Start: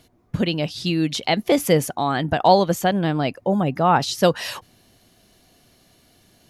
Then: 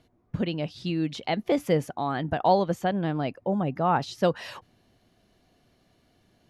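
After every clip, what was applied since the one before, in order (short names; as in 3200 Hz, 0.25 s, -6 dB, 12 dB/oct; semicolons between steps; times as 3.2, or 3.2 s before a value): LPF 2200 Hz 6 dB/oct; gain -6 dB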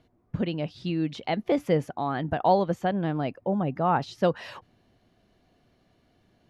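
high shelf 5100 Hz -9.5 dB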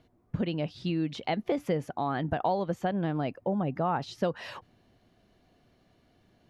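compressor 4:1, threshold -25 dBFS, peak gain reduction 8.5 dB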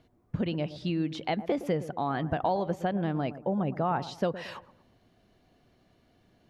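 dark delay 0.115 s, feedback 34%, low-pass 1100 Hz, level -13.5 dB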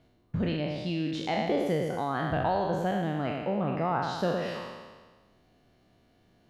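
spectral trails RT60 1.41 s; gain -2.5 dB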